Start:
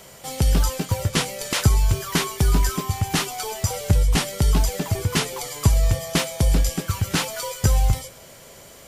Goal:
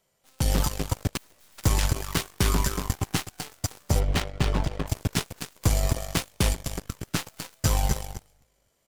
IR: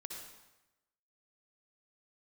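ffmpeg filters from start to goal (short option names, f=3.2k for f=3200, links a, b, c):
-filter_complex "[0:a]asettb=1/sr,asplit=3[a][b][c];[a]atrim=end=6.534[d];[b]atrim=start=6.53:end=7.05,asetpts=PTS-STARTPTS,afade=t=in:d=0.004:c=qsin,afade=t=out:st=0.516:d=0.004:c=qsin,acompressor=threshold=-21dB:ratio=8[e];[c]atrim=start=7.046[f];[d][e]acrossfade=d=0.004:c1=hsin:c2=qsin[g];[g][f]acrossfade=d=0.004:c1=qsin:c2=hsin,aecho=1:1:254|508|762:0.531|0.138|0.0359,asplit=3[h][i][j];[h]afade=t=out:st=1.16:d=0.02[k];[i]aeval=exprs='0.0668*(abs(mod(val(0)/0.0668+3,4)-2)-1)':c=same,afade=t=in:st=1.16:d=0.02,afade=t=out:st=1.57:d=0.02[l];[j]afade=t=in:st=1.57:d=0.02[m];[k][l][m]amix=inputs=3:normalize=0,asplit=3[n][o][p];[n]afade=t=out:st=3.99:d=0.02[q];[o]adynamicsmooth=sensitivity=3:basefreq=1.4k,afade=t=in:st=3.99:d=0.02,afade=t=out:st=4.86:d=0.02[r];[p]afade=t=in:st=4.86:d=0.02[s];[q][r][s]amix=inputs=3:normalize=0,aeval=exprs='0.562*(cos(1*acos(clip(val(0)/0.562,-1,1)))-cos(1*PI/2))+0.0355*(cos(4*acos(clip(val(0)/0.562,-1,1)))-cos(4*PI/2))+0.126*(cos(5*acos(clip(val(0)/0.562,-1,1)))-cos(5*PI/2))+0.178*(cos(7*acos(clip(val(0)/0.562,-1,1)))-cos(7*PI/2))+0.01*(cos(8*acos(clip(val(0)/0.562,-1,1)))-cos(8*PI/2))':c=same,volume=-7dB"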